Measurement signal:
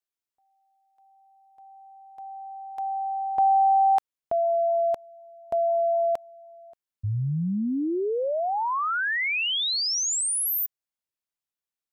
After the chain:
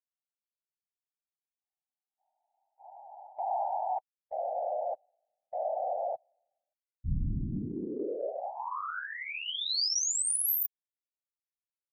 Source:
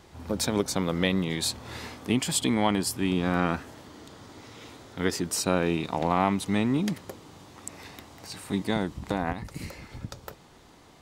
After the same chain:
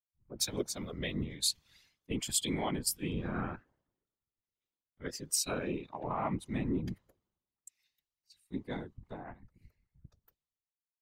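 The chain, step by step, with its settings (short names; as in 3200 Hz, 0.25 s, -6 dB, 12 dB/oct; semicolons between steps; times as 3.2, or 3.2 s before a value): per-bin expansion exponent 1.5; whisperiser; limiter -18 dBFS; three-band expander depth 100%; gain -8 dB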